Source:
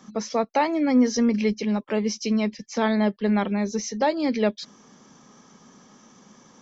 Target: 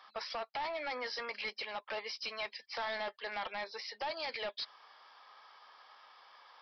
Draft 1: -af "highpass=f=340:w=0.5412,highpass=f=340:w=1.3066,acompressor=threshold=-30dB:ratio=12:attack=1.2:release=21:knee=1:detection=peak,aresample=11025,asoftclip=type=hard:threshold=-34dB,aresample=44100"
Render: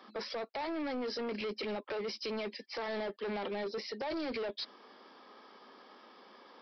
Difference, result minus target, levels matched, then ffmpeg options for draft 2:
250 Hz band +15.5 dB
-af "highpass=f=740:w=0.5412,highpass=f=740:w=1.3066,acompressor=threshold=-30dB:ratio=12:attack=1.2:release=21:knee=1:detection=peak,aresample=11025,asoftclip=type=hard:threshold=-34dB,aresample=44100"

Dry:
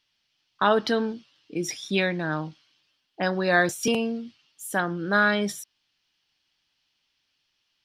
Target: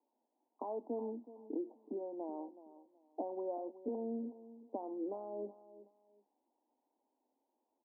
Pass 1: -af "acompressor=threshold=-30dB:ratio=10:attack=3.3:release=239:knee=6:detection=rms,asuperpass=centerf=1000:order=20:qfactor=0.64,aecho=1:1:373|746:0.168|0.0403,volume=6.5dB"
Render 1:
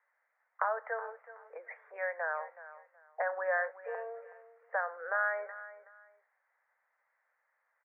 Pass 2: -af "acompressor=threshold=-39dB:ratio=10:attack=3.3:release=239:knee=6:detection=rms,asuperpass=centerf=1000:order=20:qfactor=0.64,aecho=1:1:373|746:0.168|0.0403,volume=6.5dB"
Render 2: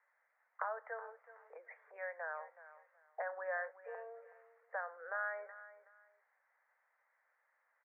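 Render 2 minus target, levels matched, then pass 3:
500 Hz band -3.5 dB
-af "acompressor=threshold=-39dB:ratio=10:attack=3.3:release=239:knee=6:detection=rms,asuperpass=centerf=470:order=20:qfactor=0.64,aecho=1:1:373|746:0.168|0.0403,volume=6.5dB"

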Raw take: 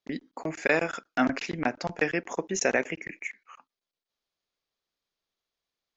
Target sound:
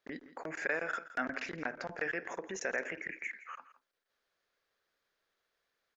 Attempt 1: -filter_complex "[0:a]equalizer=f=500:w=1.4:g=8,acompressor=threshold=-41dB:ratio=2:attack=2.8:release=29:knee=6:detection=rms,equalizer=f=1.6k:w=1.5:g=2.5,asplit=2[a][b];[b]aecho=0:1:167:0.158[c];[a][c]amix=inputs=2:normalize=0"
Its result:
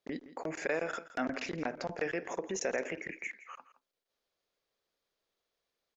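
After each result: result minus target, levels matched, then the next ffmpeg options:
compressor: peak gain reduction -5.5 dB; 2000 Hz band -4.5 dB
-filter_complex "[0:a]equalizer=f=500:w=1.4:g=8,acompressor=threshold=-52dB:ratio=2:attack=2.8:release=29:knee=6:detection=rms,equalizer=f=1.6k:w=1.5:g=2.5,asplit=2[a][b];[b]aecho=0:1:167:0.158[c];[a][c]amix=inputs=2:normalize=0"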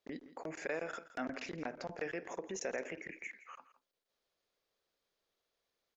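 2000 Hz band -4.5 dB
-filter_complex "[0:a]equalizer=f=500:w=1.4:g=8,acompressor=threshold=-52dB:ratio=2:attack=2.8:release=29:knee=6:detection=rms,equalizer=f=1.6k:w=1.5:g=13,asplit=2[a][b];[b]aecho=0:1:167:0.158[c];[a][c]amix=inputs=2:normalize=0"

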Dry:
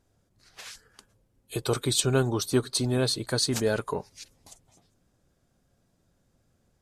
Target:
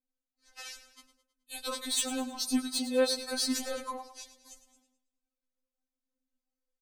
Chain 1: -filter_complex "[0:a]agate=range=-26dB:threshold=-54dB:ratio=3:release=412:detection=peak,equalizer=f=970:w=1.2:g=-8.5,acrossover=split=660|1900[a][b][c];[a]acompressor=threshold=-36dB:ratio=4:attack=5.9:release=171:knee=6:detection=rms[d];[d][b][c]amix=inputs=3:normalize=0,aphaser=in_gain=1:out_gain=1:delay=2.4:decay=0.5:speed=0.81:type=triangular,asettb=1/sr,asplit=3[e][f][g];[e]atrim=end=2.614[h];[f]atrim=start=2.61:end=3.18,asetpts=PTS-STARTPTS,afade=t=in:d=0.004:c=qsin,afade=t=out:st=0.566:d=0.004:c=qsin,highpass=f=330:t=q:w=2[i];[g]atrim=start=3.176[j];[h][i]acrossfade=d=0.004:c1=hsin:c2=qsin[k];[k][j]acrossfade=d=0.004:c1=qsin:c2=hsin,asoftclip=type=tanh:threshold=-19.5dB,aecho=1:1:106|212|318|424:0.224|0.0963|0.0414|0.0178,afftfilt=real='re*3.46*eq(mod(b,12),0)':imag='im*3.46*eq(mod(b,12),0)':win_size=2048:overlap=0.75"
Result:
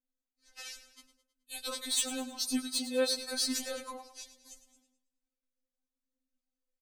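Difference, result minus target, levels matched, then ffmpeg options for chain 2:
compressor: peak gain reduction +4.5 dB; 1000 Hz band -4.0 dB
-filter_complex "[0:a]agate=range=-26dB:threshold=-54dB:ratio=3:release=412:detection=peak,equalizer=f=970:w=1.2:g=-2,acrossover=split=660|1900[a][b][c];[a]acompressor=threshold=-29.5dB:ratio=4:attack=5.9:release=171:knee=6:detection=rms[d];[d][b][c]amix=inputs=3:normalize=0,aphaser=in_gain=1:out_gain=1:delay=2.4:decay=0.5:speed=0.81:type=triangular,asettb=1/sr,asplit=3[e][f][g];[e]atrim=end=2.614[h];[f]atrim=start=2.61:end=3.18,asetpts=PTS-STARTPTS,afade=t=in:d=0.004:c=qsin,afade=t=out:st=0.566:d=0.004:c=qsin,highpass=f=330:t=q:w=2[i];[g]atrim=start=3.176[j];[h][i]acrossfade=d=0.004:c1=hsin:c2=qsin[k];[k][j]acrossfade=d=0.004:c1=qsin:c2=hsin,asoftclip=type=tanh:threshold=-19.5dB,aecho=1:1:106|212|318|424:0.224|0.0963|0.0414|0.0178,afftfilt=real='re*3.46*eq(mod(b,12),0)':imag='im*3.46*eq(mod(b,12),0)':win_size=2048:overlap=0.75"

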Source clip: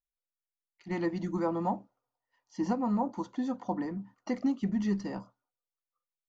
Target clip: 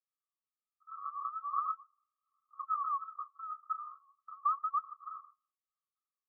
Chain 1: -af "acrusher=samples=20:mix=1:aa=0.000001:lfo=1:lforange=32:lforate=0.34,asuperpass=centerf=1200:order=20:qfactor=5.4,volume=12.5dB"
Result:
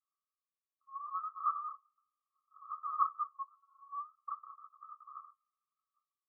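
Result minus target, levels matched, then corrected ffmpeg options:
decimation with a swept rate: distortion -13 dB
-af "acrusher=samples=67:mix=1:aa=0.000001:lfo=1:lforange=107:lforate=0.34,asuperpass=centerf=1200:order=20:qfactor=5.4,volume=12.5dB"

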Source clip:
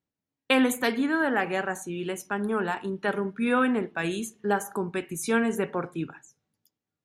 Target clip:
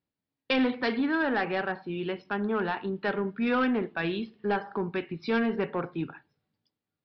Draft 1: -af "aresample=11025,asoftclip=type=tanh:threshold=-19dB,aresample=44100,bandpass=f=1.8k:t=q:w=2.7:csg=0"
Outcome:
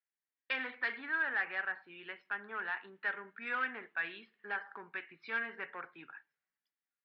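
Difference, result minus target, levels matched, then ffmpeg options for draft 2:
2000 Hz band +7.0 dB
-af "aresample=11025,asoftclip=type=tanh:threshold=-19dB,aresample=44100"

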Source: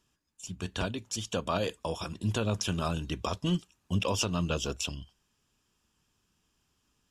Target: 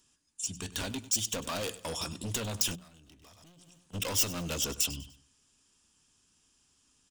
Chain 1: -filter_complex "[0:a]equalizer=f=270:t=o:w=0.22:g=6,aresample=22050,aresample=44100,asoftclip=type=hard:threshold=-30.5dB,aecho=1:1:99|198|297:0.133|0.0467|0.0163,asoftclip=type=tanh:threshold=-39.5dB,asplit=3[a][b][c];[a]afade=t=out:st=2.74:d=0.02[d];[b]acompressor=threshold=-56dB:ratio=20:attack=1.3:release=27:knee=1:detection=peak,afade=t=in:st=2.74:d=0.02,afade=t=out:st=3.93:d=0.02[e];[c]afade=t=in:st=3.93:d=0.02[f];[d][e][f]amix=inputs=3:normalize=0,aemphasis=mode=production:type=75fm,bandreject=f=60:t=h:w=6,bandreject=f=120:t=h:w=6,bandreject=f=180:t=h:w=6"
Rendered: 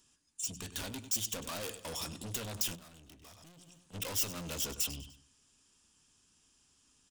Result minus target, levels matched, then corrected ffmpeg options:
soft clip: distortion +14 dB
-filter_complex "[0:a]equalizer=f=270:t=o:w=0.22:g=6,aresample=22050,aresample=44100,asoftclip=type=hard:threshold=-30.5dB,aecho=1:1:99|198|297:0.133|0.0467|0.0163,asoftclip=type=tanh:threshold=-29dB,asplit=3[a][b][c];[a]afade=t=out:st=2.74:d=0.02[d];[b]acompressor=threshold=-56dB:ratio=20:attack=1.3:release=27:knee=1:detection=peak,afade=t=in:st=2.74:d=0.02,afade=t=out:st=3.93:d=0.02[e];[c]afade=t=in:st=3.93:d=0.02[f];[d][e][f]amix=inputs=3:normalize=0,aemphasis=mode=production:type=75fm,bandreject=f=60:t=h:w=6,bandreject=f=120:t=h:w=6,bandreject=f=180:t=h:w=6"

